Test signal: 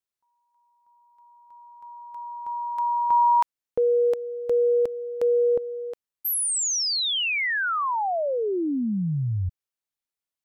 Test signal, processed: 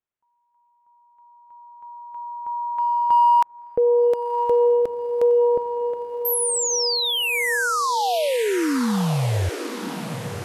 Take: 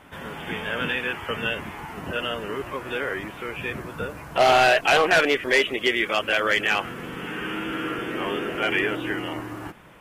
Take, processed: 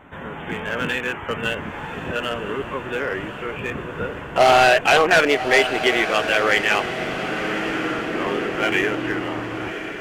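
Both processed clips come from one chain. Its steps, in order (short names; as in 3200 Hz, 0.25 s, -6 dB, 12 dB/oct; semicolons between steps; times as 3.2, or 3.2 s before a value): Wiener smoothing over 9 samples; diffused feedback echo 1.085 s, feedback 58%, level -10 dB; gain +3.5 dB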